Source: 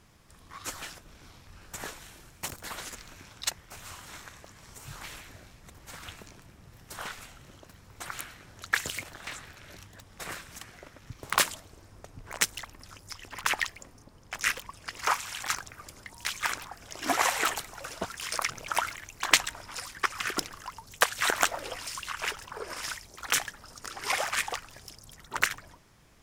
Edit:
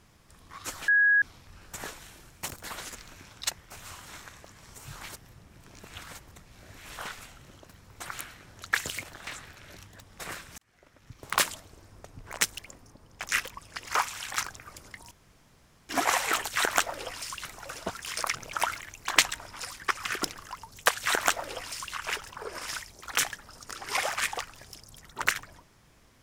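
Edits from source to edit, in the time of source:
0.88–1.22 bleep 1660 Hz -18 dBFS
5.09–6.97 reverse
10.58–11.46 fade in
12.59–13.71 cut
16.23–17.01 room tone
21.13–22.1 copy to 17.6

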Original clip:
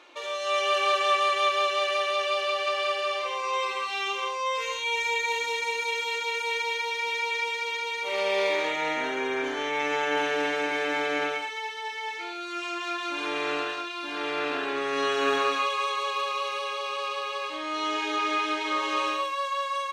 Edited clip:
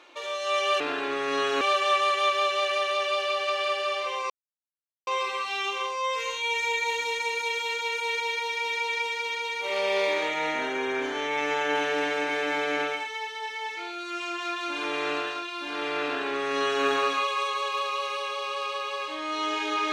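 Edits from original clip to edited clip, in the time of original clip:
3.49 insert silence 0.77 s
14.45–15.26 copy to 0.8

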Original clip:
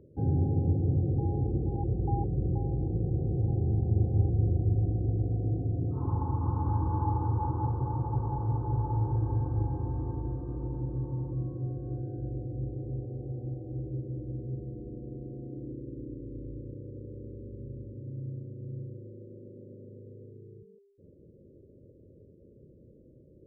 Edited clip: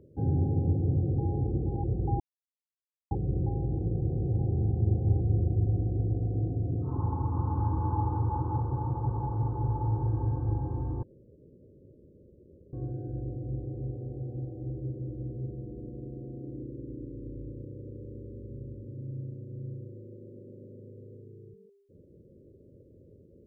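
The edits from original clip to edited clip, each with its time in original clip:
2.2 insert silence 0.91 s
10.12–11.82 room tone

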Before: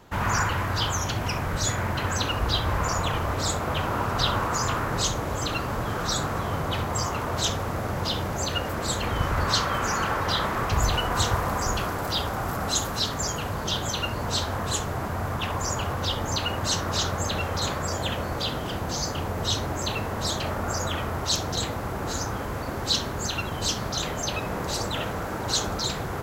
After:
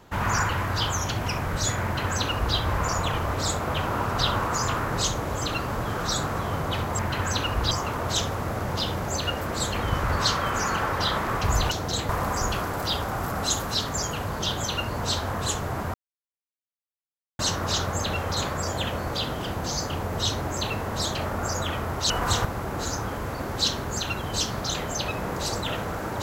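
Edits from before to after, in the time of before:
1.84–2.56 copy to 6.99
10.99–11.34 swap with 21.35–21.73
15.19–16.64 mute

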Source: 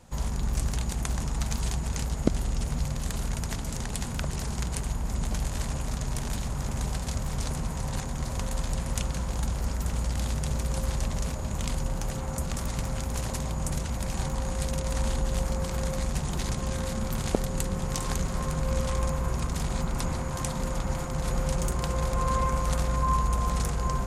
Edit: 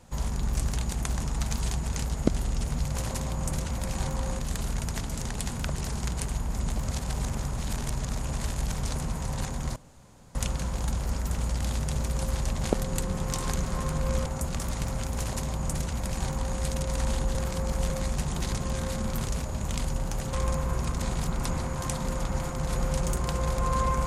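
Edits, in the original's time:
5.34–7.27 reverse
8.31–8.9 room tone
11.18–12.23 swap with 17.25–18.88
13.13–14.58 copy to 2.94
15.32–15.87 reverse
19.57–19.82 reverse

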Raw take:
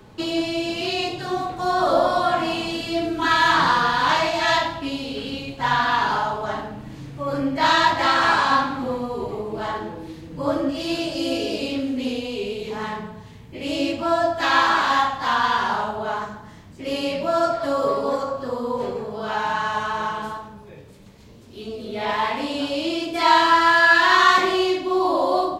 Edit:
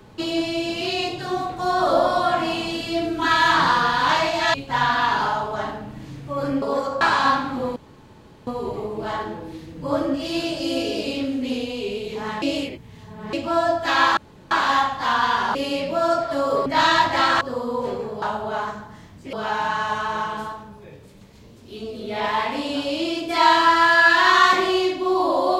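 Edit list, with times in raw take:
4.54–5.44 cut
7.52–8.27 swap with 17.98–18.37
9.02 insert room tone 0.71 s
12.97–13.88 reverse
14.72 insert room tone 0.34 s
15.76–16.87 move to 19.18

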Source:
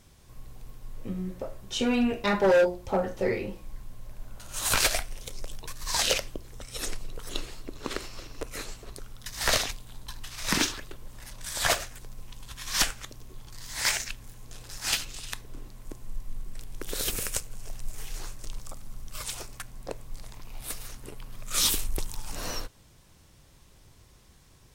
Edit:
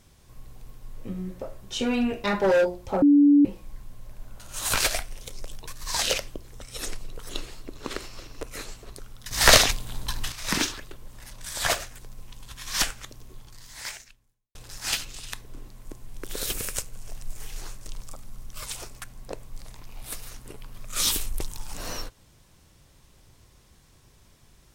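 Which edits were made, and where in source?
3.02–3.45 bleep 288 Hz -12.5 dBFS
9.31–10.32 gain +10 dB
13.34–14.55 fade out quadratic
16.07–16.65 cut

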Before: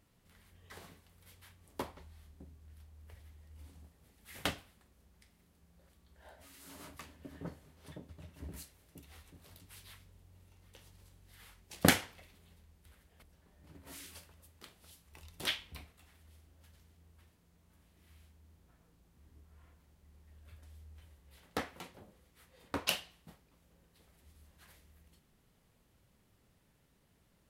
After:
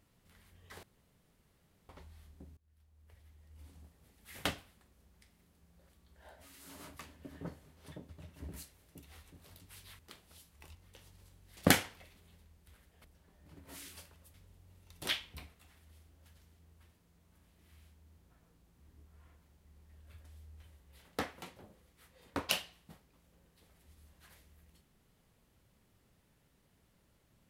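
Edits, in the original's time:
0.83–1.89 room tone
2.57–3.86 fade in, from -22 dB
9.99–10.55 swap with 14.52–15.28
11.37–11.75 cut

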